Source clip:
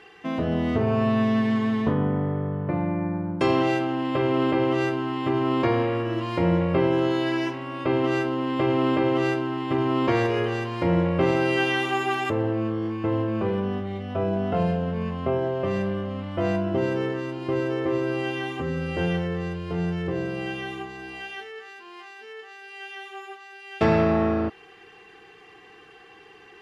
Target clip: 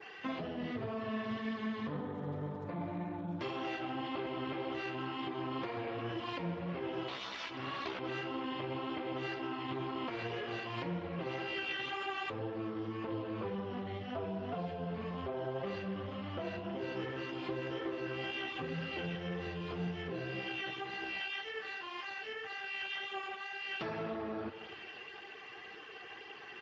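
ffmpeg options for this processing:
-filter_complex "[0:a]asplit=2[a][b];[b]adelay=93,lowpass=f=3.5k:p=1,volume=-15.5dB,asplit=2[c][d];[d]adelay=93,lowpass=f=3.5k:p=1,volume=0.53,asplit=2[e][f];[f]adelay=93,lowpass=f=3.5k:p=1,volume=0.53,asplit=2[g][h];[h]adelay=93,lowpass=f=3.5k:p=1,volume=0.53,asplit=2[i][j];[j]adelay=93,lowpass=f=3.5k:p=1,volume=0.53[k];[c][e][g][i][k]amix=inputs=5:normalize=0[l];[a][l]amix=inputs=2:normalize=0,asettb=1/sr,asplit=3[m][n][o];[m]atrim=end=7.084[p];[n]atrim=start=7.08:end=7.99,asetpts=PTS-STARTPTS,afade=t=in:d=0.004:c=qsin,afade=t=out:st=0.906:d=0.004:c=qsin,aeval=exprs='0.251*(cos(1*acos(clip(val(0)/0.251,-1,1)))-cos(1*PI/2))+0.0282*(cos(6*acos(clip(val(0)/0.251,-1,1)))-cos(6*PI/2))+0.0794*(cos(7*acos(clip(val(0)/0.251,-1,1)))-cos(7*PI/2))':c=same[q];[o]atrim=start=7.986[r];[p][q]acrossfade=d=0.004:c1=hsin:c2=qsin[s];[s][r]acrossfade=d=0.004:c1=qsin:c2=hsin,adynamicequalizer=threshold=0.00355:dfrequency=3600:dqfactor=1.6:tfrequency=3600:tqfactor=1.6:attack=5:release=100:ratio=0.375:range=2.5:mode=boostabove:tftype=bell,lowpass=f=5.6k:w=0.5412,lowpass=f=5.6k:w=1.3066,alimiter=limit=-17.5dB:level=0:latency=1:release=159,tiltshelf=f=840:g=-3.5,acompressor=threshold=-37dB:ratio=5,flanger=delay=2.2:depth=6.4:regen=-9:speed=1.9:shape=triangular,volume=3dB" -ar 16000 -c:a libspeex -b:a 13k

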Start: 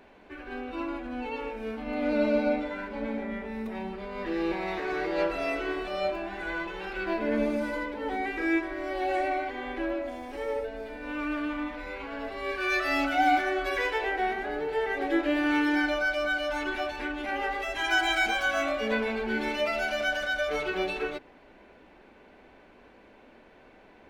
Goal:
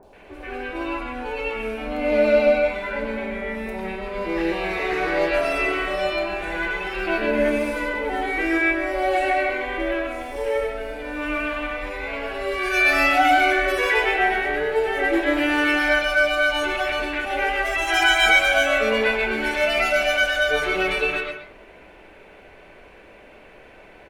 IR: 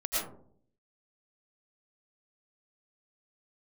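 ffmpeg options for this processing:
-filter_complex "[0:a]equalizer=f=250:t=o:w=0.67:g=-9,equalizer=f=2.5k:t=o:w=0.67:g=4,equalizer=f=10k:t=o:w=0.67:g=6,acrossover=split=1000|4300[a][b][c];[c]adelay=30[d];[b]adelay=130[e];[a][e][d]amix=inputs=3:normalize=0,asplit=2[f][g];[1:a]atrim=start_sample=2205,adelay=23[h];[g][h]afir=irnorm=-1:irlink=0,volume=-14dB[i];[f][i]amix=inputs=2:normalize=0,volume=8.5dB"

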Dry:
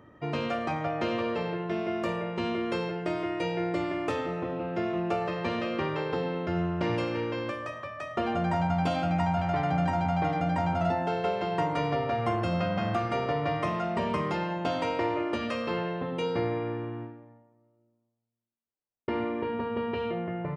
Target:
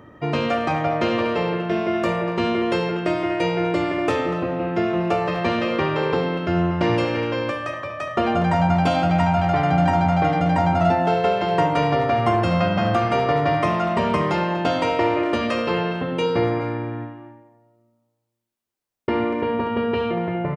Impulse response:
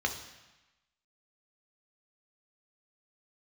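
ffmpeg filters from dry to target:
-filter_complex "[0:a]asplit=2[a][b];[b]adelay=240,highpass=300,lowpass=3.4k,asoftclip=type=hard:threshold=-23.5dB,volume=-9dB[c];[a][c]amix=inputs=2:normalize=0,volume=8.5dB"

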